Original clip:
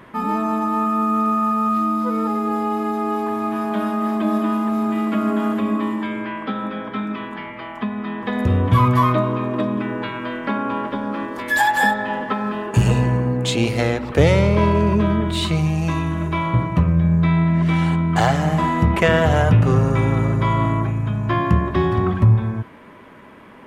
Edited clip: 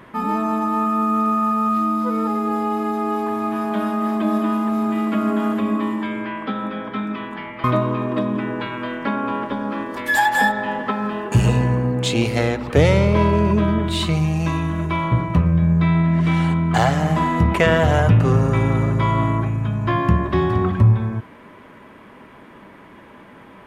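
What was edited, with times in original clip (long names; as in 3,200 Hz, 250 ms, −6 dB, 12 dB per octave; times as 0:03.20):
0:07.64–0:09.06: remove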